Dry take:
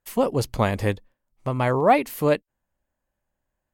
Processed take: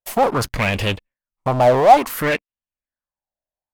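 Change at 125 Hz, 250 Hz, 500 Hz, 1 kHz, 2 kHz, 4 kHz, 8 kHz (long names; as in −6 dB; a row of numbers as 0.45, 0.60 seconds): +2.0, +1.0, +5.0, +8.5, +7.0, +9.5, +7.0 decibels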